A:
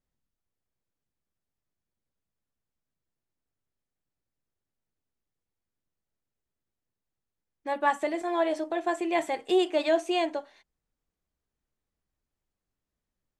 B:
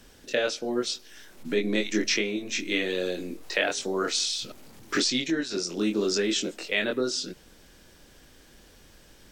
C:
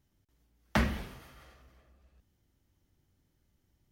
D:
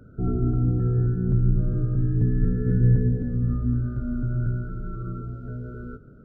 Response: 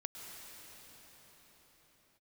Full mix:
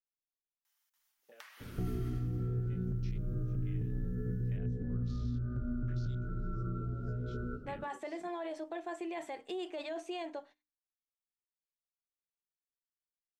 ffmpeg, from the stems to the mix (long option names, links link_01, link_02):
-filter_complex "[0:a]agate=range=-22dB:threshold=-46dB:ratio=16:detection=peak,highshelf=frequency=9000:gain=-6.5,alimiter=limit=-23dB:level=0:latency=1:release=22,volume=-8.5dB,asplit=2[link_01][link_02];[1:a]afwtdn=0.0316,adelay=950,volume=-12.5dB[link_03];[2:a]highpass=frequency=960:width=0.5412,highpass=frequency=960:width=1.3066,highshelf=frequency=6400:gain=8,alimiter=level_in=1dB:limit=-24dB:level=0:latency=1:release=338,volume=-1dB,adelay=650,volume=-1.5dB,asplit=2[link_04][link_05];[link_05]volume=-19dB[link_06];[3:a]alimiter=limit=-19dB:level=0:latency=1:release=410,adelay=1600,volume=2dB[link_07];[link_02]apad=whole_len=452832[link_08];[link_03][link_08]sidechaingate=range=-20dB:threshold=-44dB:ratio=16:detection=peak[link_09];[link_01][link_07]amix=inputs=2:normalize=0,acompressor=threshold=-35dB:ratio=3,volume=0dB[link_10];[link_09][link_04]amix=inputs=2:normalize=0,acompressor=threshold=-54dB:ratio=6,volume=0dB[link_11];[4:a]atrim=start_sample=2205[link_12];[link_06][link_12]afir=irnorm=-1:irlink=0[link_13];[link_10][link_11][link_13]amix=inputs=3:normalize=0,bandreject=frequency=50:width_type=h:width=6,bandreject=frequency=100:width_type=h:width=6,bandreject=frequency=150:width_type=h:width=6,bandreject=frequency=200:width_type=h:width=6,bandreject=frequency=250:width_type=h:width=6,bandreject=frequency=300:width_type=h:width=6"